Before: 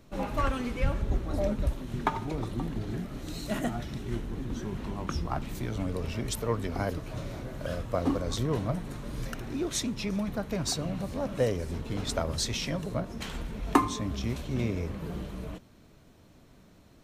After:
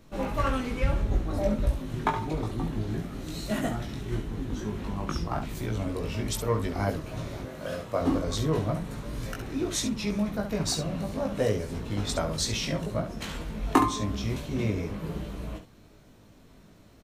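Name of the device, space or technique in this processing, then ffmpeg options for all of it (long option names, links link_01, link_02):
slapback doubling: -filter_complex "[0:a]asplit=3[link_01][link_02][link_03];[link_02]adelay=19,volume=-3dB[link_04];[link_03]adelay=69,volume=-8.5dB[link_05];[link_01][link_04][link_05]amix=inputs=3:normalize=0,asettb=1/sr,asplit=3[link_06][link_07][link_08];[link_06]atrim=end=7.454[link_09];[link_07]atrim=start=7.45:end=8.01,asetpts=PTS-STARTPTS,afade=type=in:duration=0.004:curve=qsin,afade=type=out:start_time=0.556:duration=0.004:curve=qsin,highpass=frequency=210:poles=1[link_10];[link_08]atrim=start=8.006[link_11];[link_09][link_10]acrossfade=duration=0.004:curve1=hsin:curve2=qsin[link_12];[link_12][link_11]acrossfade=duration=0.004:curve1=qsin:curve2=hsin"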